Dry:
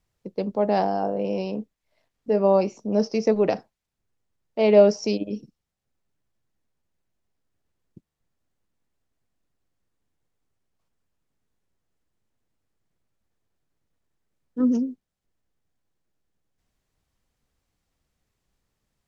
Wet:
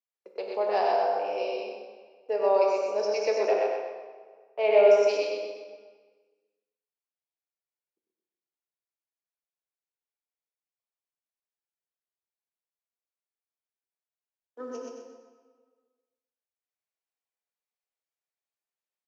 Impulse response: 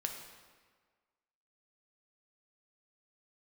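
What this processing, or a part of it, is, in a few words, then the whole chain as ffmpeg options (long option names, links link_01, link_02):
PA in a hall: -filter_complex "[0:a]agate=range=-18dB:threshold=-40dB:ratio=16:detection=peak,highpass=frequency=460:width=0.5412,highpass=frequency=460:width=1.3066,asettb=1/sr,asplit=3[link_01][link_02][link_03];[link_01]atrim=end=3.344[link_04];[link_02]atrim=start=3.34:end=5.09,asetpts=PTS-STARTPTS,afade=type=in:duration=0.004:curve=qsin,afade=type=out:start_time=1.746:duration=0.004:curve=qsin,equalizer=frequency=4700:width_type=o:width=0.86:gain=-10.5[link_05];[link_03]atrim=start=5.086[link_06];[link_04][link_05]acrossfade=duration=0.004:curve1=hsin:curve2=qsin[link_07];[link_07][link_06]acrossfade=duration=0.004:curve1=qsin:curve2=hsin,highpass=190,equalizer=frequency=2400:width_type=o:width=0.26:gain=5,aecho=1:1:97:0.501,aecho=1:1:126|252|378|504:0.708|0.227|0.0725|0.0232[link_08];[1:a]atrim=start_sample=2205[link_09];[link_08][link_09]afir=irnorm=-1:irlink=0,volume=-3dB"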